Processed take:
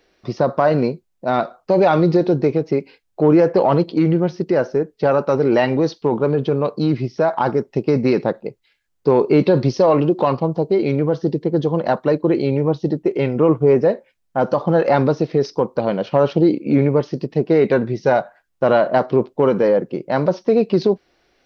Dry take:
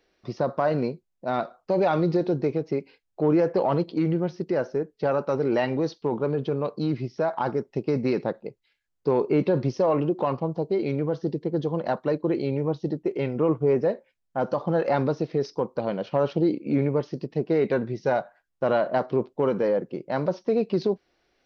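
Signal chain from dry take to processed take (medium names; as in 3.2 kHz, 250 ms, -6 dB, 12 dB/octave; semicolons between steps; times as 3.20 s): 9.26–10.46 s: peaking EQ 4.3 kHz +6.5 dB 0.66 oct; trim +8 dB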